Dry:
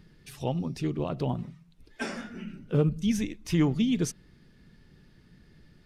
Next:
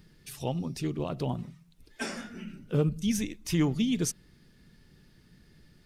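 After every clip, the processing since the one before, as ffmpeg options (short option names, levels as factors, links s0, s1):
-af "highshelf=f=5300:g=10,volume=0.794"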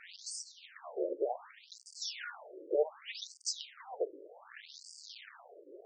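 -af "aeval=exprs='val(0)+0.5*0.0141*sgn(val(0))':c=same,aeval=exprs='0.188*(cos(1*acos(clip(val(0)/0.188,-1,1)))-cos(1*PI/2))+0.0668*(cos(4*acos(clip(val(0)/0.188,-1,1)))-cos(4*PI/2))+0.0596*(cos(5*acos(clip(val(0)/0.188,-1,1)))-cos(5*PI/2))+0.0211*(cos(7*acos(clip(val(0)/0.188,-1,1)))-cos(7*PI/2))':c=same,afftfilt=real='re*between(b*sr/1024,420*pow(6500/420,0.5+0.5*sin(2*PI*0.66*pts/sr))/1.41,420*pow(6500/420,0.5+0.5*sin(2*PI*0.66*pts/sr))*1.41)':imag='im*between(b*sr/1024,420*pow(6500/420,0.5+0.5*sin(2*PI*0.66*pts/sr))/1.41,420*pow(6500/420,0.5+0.5*sin(2*PI*0.66*pts/sr))*1.41)':win_size=1024:overlap=0.75,volume=0.668"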